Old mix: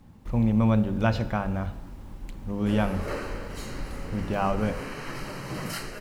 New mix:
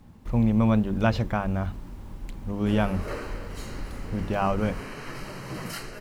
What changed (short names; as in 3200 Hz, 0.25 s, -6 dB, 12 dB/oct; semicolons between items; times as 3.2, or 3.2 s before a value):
speech +3.0 dB; reverb: off